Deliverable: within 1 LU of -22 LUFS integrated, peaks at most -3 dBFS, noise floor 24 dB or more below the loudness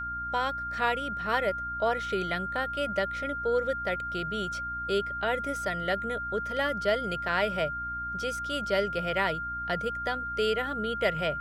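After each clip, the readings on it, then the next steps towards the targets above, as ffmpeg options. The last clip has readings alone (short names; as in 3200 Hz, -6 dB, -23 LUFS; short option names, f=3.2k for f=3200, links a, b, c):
hum 60 Hz; harmonics up to 300 Hz; hum level -43 dBFS; steady tone 1400 Hz; tone level -32 dBFS; loudness -29.5 LUFS; peak -12.5 dBFS; loudness target -22.0 LUFS
-> -af "bandreject=f=60:t=h:w=6,bandreject=f=120:t=h:w=6,bandreject=f=180:t=h:w=6,bandreject=f=240:t=h:w=6,bandreject=f=300:t=h:w=6"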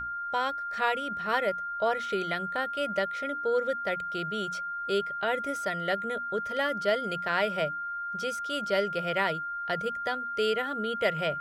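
hum none; steady tone 1400 Hz; tone level -32 dBFS
-> -af "bandreject=f=1.4k:w=30"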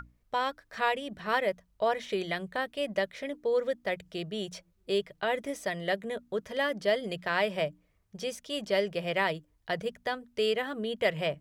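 steady tone none; loudness -32.0 LUFS; peak -13.5 dBFS; loudness target -22.0 LUFS
-> -af "volume=10dB"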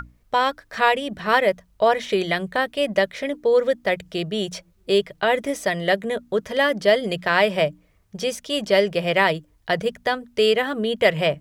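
loudness -22.0 LUFS; peak -3.5 dBFS; noise floor -60 dBFS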